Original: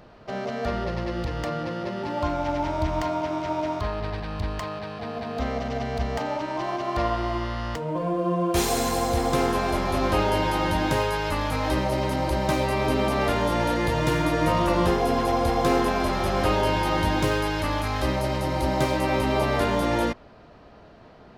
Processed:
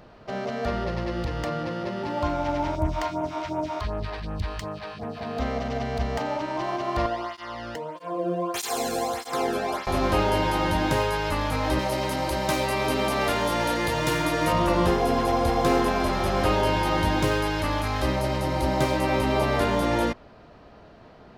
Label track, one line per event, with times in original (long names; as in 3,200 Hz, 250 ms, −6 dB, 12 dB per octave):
2.750000	5.210000	all-pass phaser stages 2, 2.7 Hz, lowest notch 110–4,300 Hz
7.060000	9.870000	through-zero flanger with one copy inverted nulls at 1.6 Hz, depth 1.1 ms
11.790000	14.530000	spectral tilt +1.5 dB per octave